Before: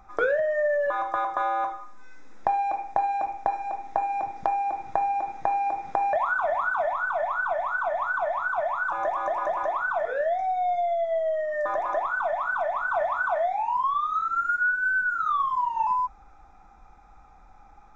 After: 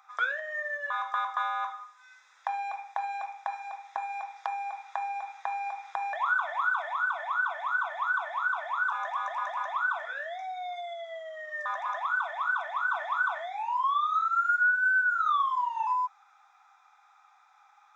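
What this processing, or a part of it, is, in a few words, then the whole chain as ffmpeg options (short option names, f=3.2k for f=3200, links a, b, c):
headphones lying on a table: -af "highpass=f=1k:w=0.5412,highpass=f=1k:w=1.3066,equalizer=f=3.5k:t=o:w=0.24:g=7.5"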